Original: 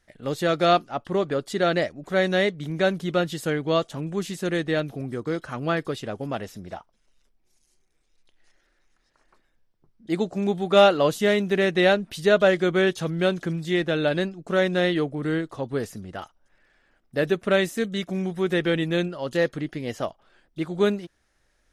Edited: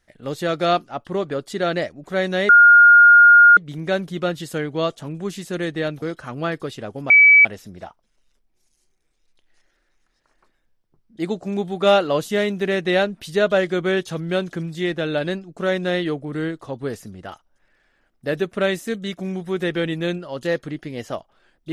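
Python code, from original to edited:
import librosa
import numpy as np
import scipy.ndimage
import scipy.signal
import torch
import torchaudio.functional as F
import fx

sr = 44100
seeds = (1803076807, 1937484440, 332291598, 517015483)

y = fx.edit(x, sr, fx.insert_tone(at_s=2.49, length_s=1.08, hz=1420.0, db=-6.0),
    fx.cut(start_s=4.94, length_s=0.33),
    fx.insert_tone(at_s=6.35, length_s=0.35, hz=2290.0, db=-7.0), tone=tone)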